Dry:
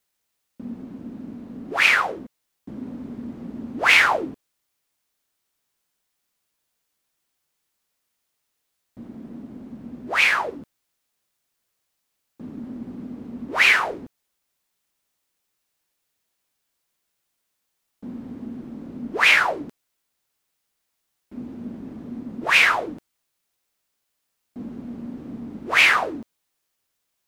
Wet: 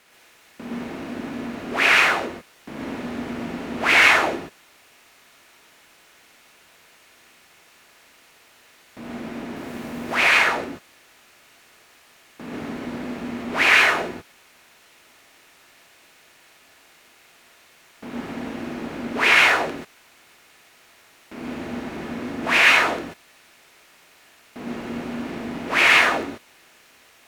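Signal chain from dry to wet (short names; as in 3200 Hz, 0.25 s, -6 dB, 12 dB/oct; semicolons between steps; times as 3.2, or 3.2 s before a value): per-bin compression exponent 0.6; 9.56–10.15 high shelf 7800 Hz +10 dB; non-linear reverb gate 0.16 s rising, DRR -3 dB; gain -6 dB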